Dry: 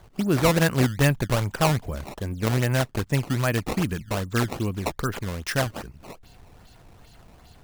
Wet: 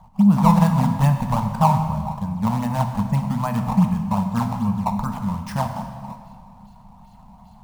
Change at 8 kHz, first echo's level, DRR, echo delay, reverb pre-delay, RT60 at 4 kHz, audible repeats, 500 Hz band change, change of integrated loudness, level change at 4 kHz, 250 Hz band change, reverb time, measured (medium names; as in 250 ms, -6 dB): -7.0 dB, no echo, 5.0 dB, no echo, 4 ms, 1.5 s, no echo, -5.0 dB, +4.0 dB, -8.5 dB, +7.5 dB, 2.0 s